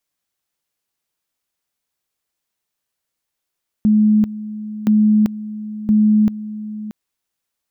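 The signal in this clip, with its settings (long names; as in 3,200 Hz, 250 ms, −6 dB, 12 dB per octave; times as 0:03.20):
tone at two levels in turn 213 Hz −9.5 dBFS, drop 15.5 dB, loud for 0.39 s, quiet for 0.63 s, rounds 3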